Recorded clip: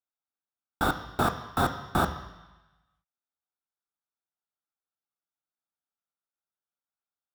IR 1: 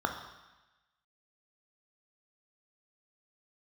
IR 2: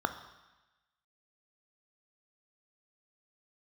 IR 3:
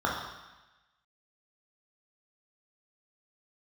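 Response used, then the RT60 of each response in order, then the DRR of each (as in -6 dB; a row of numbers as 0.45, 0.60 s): 2; 1.1, 1.1, 1.1 s; 4.0, 8.5, -3.5 dB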